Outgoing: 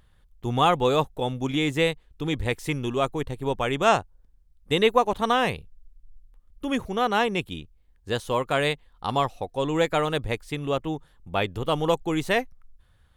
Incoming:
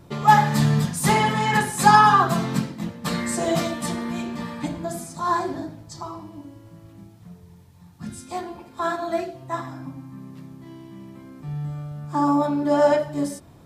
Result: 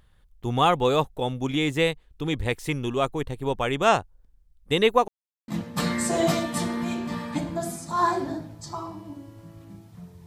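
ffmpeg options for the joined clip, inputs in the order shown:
ffmpeg -i cue0.wav -i cue1.wav -filter_complex "[0:a]apad=whole_dur=10.26,atrim=end=10.26,asplit=2[link_01][link_02];[link_01]atrim=end=5.08,asetpts=PTS-STARTPTS,afade=type=out:start_time=5.076:duration=0.004:curve=hsin[link_03];[link_02]atrim=start=5.08:end=5.48,asetpts=PTS-STARTPTS,volume=0[link_04];[1:a]atrim=start=2.76:end=7.54,asetpts=PTS-STARTPTS,afade=type=in:duration=0.004:curve=hsin[link_05];[link_03][link_04][link_05]concat=n=3:v=0:a=1" out.wav

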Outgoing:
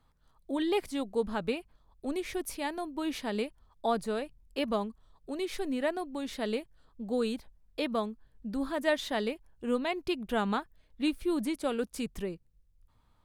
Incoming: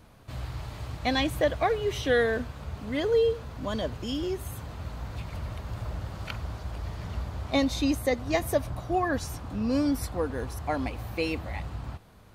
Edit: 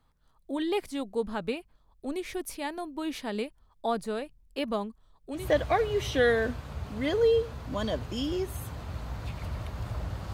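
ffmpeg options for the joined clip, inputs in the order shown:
ffmpeg -i cue0.wav -i cue1.wav -filter_complex "[0:a]apad=whole_dur=10.33,atrim=end=10.33,atrim=end=5.51,asetpts=PTS-STARTPTS[link_01];[1:a]atrim=start=1.22:end=6.24,asetpts=PTS-STARTPTS[link_02];[link_01][link_02]acrossfade=duration=0.2:curve1=tri:curve2=tri" out.wav

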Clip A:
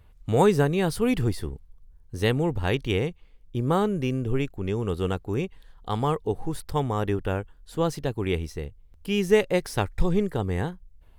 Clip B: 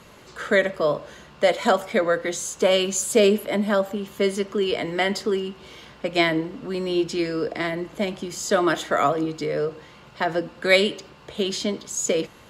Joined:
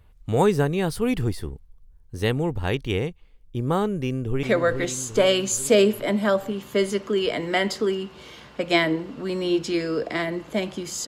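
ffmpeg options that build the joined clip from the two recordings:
ffmpeg -i cue0.wav -i cue1.wav -filter_complex "[0:a]apad=whole_dur=11.07,atrim=end=11.07,atrim=end=4.432[link_01];[1:a]atrim=start=1.878:end=8.52[link_02];[link_01][link_02]acrossfade=duration=0.004:curve1=hsin:curve2=hsin,asplit=2[link_03][link_04];[link_04]afade=type=in:start_time=4:duration=0.01,afade=type=out:start_time=4.43:duration=0.01,aecho=0:1:420|840|1260|1680|2100|2520|2940|3360:0.501187|0.300712|0.180427|0.108256|0.0649539|0.0389723|0.0233834|0.01403[link_05];[link_03][link_05]amix=inputs=2:normalize=0" out.wav

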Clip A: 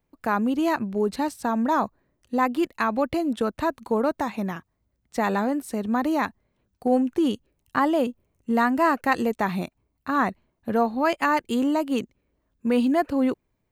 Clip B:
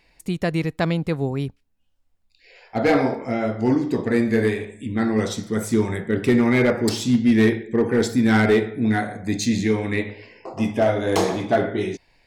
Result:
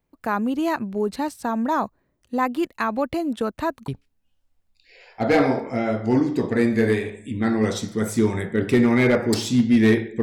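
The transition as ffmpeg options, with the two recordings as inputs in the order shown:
ffmpeg -i cue0.wav -i cue1.wav -filter_complex "[0:a]apad=whole_dur=10.22,atrim=end=10.22,atrim=end=3.882[link_01];[1:a]atrim=start=1.428:end=7.77[link_02];[link_01][link_02]acrossfade=duration=0.004:curve1=hsin:curve2=hsin" out.wav

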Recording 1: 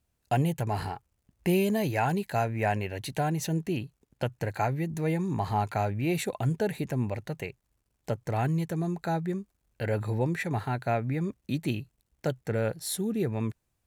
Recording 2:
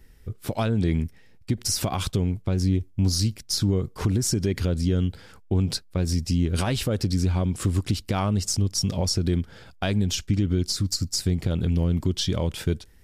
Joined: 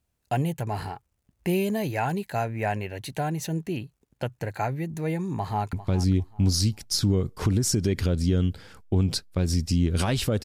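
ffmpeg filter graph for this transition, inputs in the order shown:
ffmpeg -i cue0.wav -i cue1.wav -filter_complex "[0:a]apad=whole_dur=10.44,atrim=end=10.44,atrim=end=5.732[link_01];[1:a]atrim=start=2.318:end=7.03[link_02];[link_01][link_02]acrossfade=duration=0.004:curve1=hsin:curve2=hsin,asplit=2[link_03][link_04];[link_04]afade=type=in:start_time=5.35:duration=0.01,afade=type=out:start_time=5.73:duration=0.01,aecho=0:1:400|800|1200:0.188365|0.0470912|0.0117728[link_05];[link_03][link_05]amix=inputs=2:normalize=0" out.wav

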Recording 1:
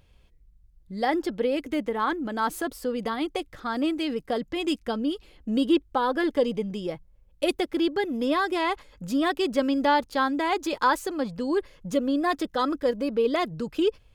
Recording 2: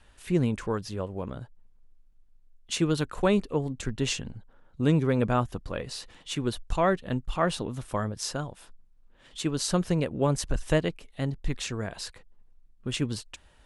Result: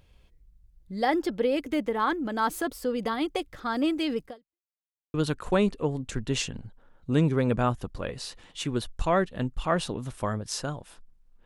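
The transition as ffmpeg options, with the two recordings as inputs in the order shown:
ffmpeg -i cue0.wav -i cue1.wav -filter_complex "[0:a]apad=whole_dur=11.45,atrim=end=11.45,asplit=2[link_01][link_02];[link_01]atrim=end=4.68,asetpts=PTS-STARTPTS,afade=type=out:start_time=4.26:duration=0.42:curve=exp[link_03];[link_02]atrim=start=4.68:end=5.14,asetpts=PTS-STARTPTS,volume=0[link_04];[1:a]atrim=start=2.85:end=9.16,asetpts=PTS-STARTPTS,afade=type=in:duration=0.004:curve=hsin[link_05];[link_03][link_04][link_05]concat=n=3:v=0:a=1" out.wav

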